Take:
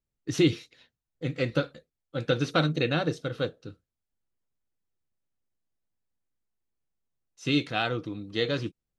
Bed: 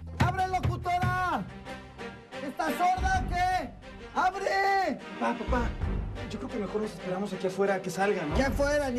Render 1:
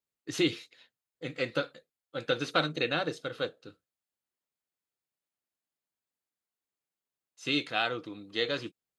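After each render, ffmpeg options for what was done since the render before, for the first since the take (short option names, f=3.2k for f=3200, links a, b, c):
-af "highpass=f=540:p=1,bandreject=f=5.7k:w=10"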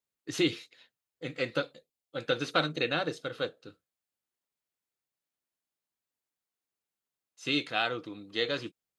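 -filter_complex "[0:a]asettb=1/sr,asplit=3[a][b][c];[a]atrim=end=1.624[d];[b]atrim=start=1.62:end=2.16,asetpts=PTS-STARTPTS,afade=t=in:d=0.004:c=qsin,afade=t=out:st=0.536:d=0.004:c=qsin,equalizer=f=1.5k:t=o:w=0.77:g=-10.5[e];[c]atrim=start=2.156[f];[d][e]acrossfade=d=0.004:c1=hsin:c2=qsin[g];[g][f]acrossfade=d=0.004:c1=qsin:c2=hsin"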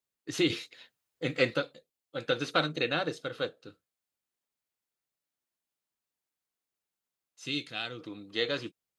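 -filter_complex "[0:a]asplit=3[a][b][c];[a]afade=t=out:st=7.45:d=0.02[d];[b]equalizer=f=880:t=o:w=2.7:g=-12,afade=t=in:st=7.45:d=0.02,afade=t=out:st=7.99:d=0.02[e];[c]afade=t=in:st=7.99:d=0.02[f];[d][e][f]amix=inputs=3:normalize=0,asplit=3[g][h][i];[g]atrim=end=0.502[j];[h]atrim=start=0.498:end=1.542,asetpts=PTS-STARTPTS,volume=6dB[k];[i]atrim=start=1.538[l];[j][k]acrossfade=d=0.004:c1=hsin:c2=hsin[m];[m][l]acrossfade=d=0.004:c1=hsin:c2=hsin"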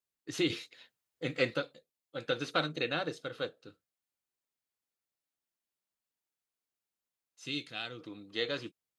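-af "volume=-3.5dB"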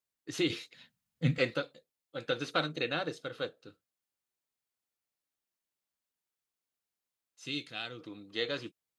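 -filter_complex "[0:a]asettb=1/sr,asplit=3[a][b][c];[a]atrim=end=0.744[d];[b]atrim=start=0.74:end=1.38,asetpts=PTS-STARTPTS,afade=t=in:d=0.004:c=qsin,afade=t=out:st=0.636:d=0.004:c=qsin,lowshelf=f=270:t=q:w=3:g=10[e];[c]atrim=start=1.376[f];[d][e]acrossfade=d=0.004:c1=hsin:c2=qsin[g];[g][f]acrossfade=d=0.004:c1=qsin:c2=hsin"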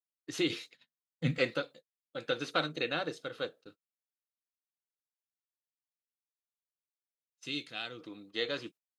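-af "agate=range=-27dB:threshold=-53dB:ratio=16:detection=peak,equalizer=f=65:t=o:w=1.1:g=-15"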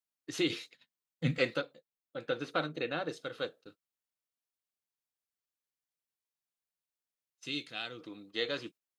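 -filter_complex "[0:a]asettb=1/sr,asplit=3[a][b][c];[a]atrim=end=1.614[d];[b]atrim=start=1.61:end=3.09,asetpts=PTS-STARTPTS,afade=t=in:d=0.004:c=qsin,afade=t=out:st=1.476:d=0.004:c=qsin,equalizer=f=7.4k:t=o:w=2.8:g=-8.5[e];[c]atrim=start=3.086[f];[d][e]acrossfade=d=0.004:c1=hsin:c2=qsin[g];[g][f]acrossfade=d=0.004:c1=qsin:c2=hsin"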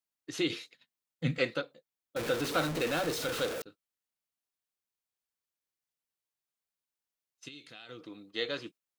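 -filter_complex "[0:a]asettb=1/sr,asplit=3[a][b][c];[a]atrim=end=2.164[d];[b]atrim=start=2.16:end=3.62,asetpts=PTS-STARTPTS,afade=t=in:d=0.004:c=qsin,afade=t=out:st=1.456:d=0.004:c=qsin,aeval=exprs='val(0)+0.5*0.0282*sgn(val(0))':c=same[e];[c]atrim=start=3.616[f];[d][e]acrossfade=d=0.004:c1=hsin:c2=qsin[g];[g][f]acrossfade=d=0.004:c1=qsin:c2=hsin,asettb=1/sr,asplit=3[h][i][j];[h]atrim=end=7.484[k];[i]atrim=start=7.48:end=7.89,asetpts=PTS-STARTPTS,afade=t=in:d=0.004:c=qsin,afade=t=out:st=0.406:d=0.004:c=qsin,acompressor=threshold=-46dB:ratio=5:attack=3.2:release=140:knee=1:detection=peak[l];[j]atrim=start=7.886[m];[k][l]acrossfade=d=0.004:c1=hsin:c2=qsin[n];[n][m]acrossfade=d=0.004:c1=qsin:c2=hsin"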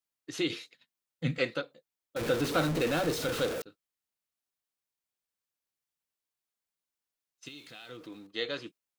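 -filter_complex "[0:a]asettb=1/sr,asplit=3[a][b][c];[a]atrim=end=2.214[d];[b]atrim=start=2.21:end=3.61,asetpts=PTS-STARTPTS,afade=t=in:d=0.004:c=qsin,afade=t=out:st=1.396:d=0.004:c=qsin,lowshelf=f=420:g=6[e];[c]atrim=start=3.606[f];[d][e]acrossfade=d=0.004:c1=hsin:c2=qsin[g];[g][f]acrossfade=d=0.004:c1=qsin:c2=hsin,asettb=1/sr,asplit=3[h][i][j];[h]atrim=end=7.464[k];[i]atrim=start=7.46:end=8.27,asetpts=PTS-STARTPTS,afade=t=in:d=0.004:c=qsin,afade=t=out:st=0.806:d=0.004:c=qsin,aeval=exprs='val(0)+0.5*0.00168*sgn(val(0))':c=same[l];[j]atrim=start=8.266[m];[k][l]acrossfade=d=0.004:c1=hsin:c2=qsin[n];[n][m]acrossfade=d=0.004:c1=qsin:c2=hsin"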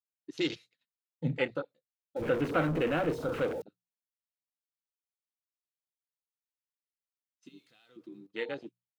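-af "bandreject=f=60:t=h:w=6,bandreject=f=120:t=h:w=6,bandreject=f=180:t=h:w=6,afwtdn=0.0158"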